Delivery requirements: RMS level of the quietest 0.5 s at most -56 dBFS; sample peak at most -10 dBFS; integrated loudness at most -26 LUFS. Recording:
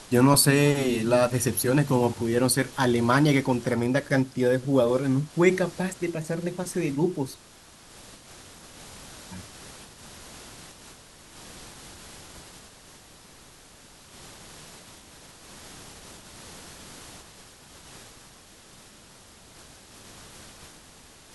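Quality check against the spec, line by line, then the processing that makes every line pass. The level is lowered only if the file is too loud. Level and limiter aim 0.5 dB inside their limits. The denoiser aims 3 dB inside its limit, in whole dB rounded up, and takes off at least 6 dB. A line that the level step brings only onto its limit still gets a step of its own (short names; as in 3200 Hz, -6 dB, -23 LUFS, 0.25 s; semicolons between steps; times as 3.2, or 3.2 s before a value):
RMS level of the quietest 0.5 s -51 dBFS: fail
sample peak -6.5 dBFS: fail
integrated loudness -23.5 LUFS: fail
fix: denoiser 6 dB, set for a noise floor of -51 dBFS; gain -3 dB; limiter -10.5 dBFS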